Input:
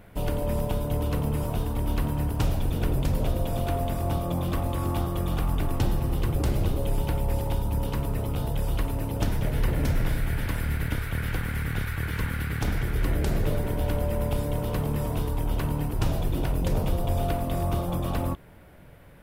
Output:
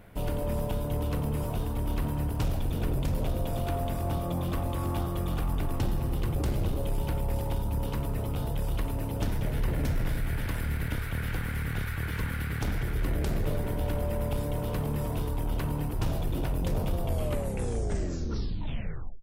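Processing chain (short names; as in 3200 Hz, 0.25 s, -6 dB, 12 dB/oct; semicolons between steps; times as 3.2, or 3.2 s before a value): tape stop at the end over 2.23 s; in parallel at +1.5 dB: soft clip -23.5 dBFS, distortion -14 dB; on the sum: gain -8.5 dB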